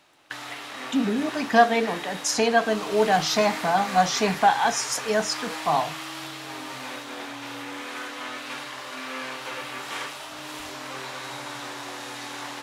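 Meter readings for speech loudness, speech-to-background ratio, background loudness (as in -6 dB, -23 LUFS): -23.0 LUFS, 11.0 dB, -34.0 LUFS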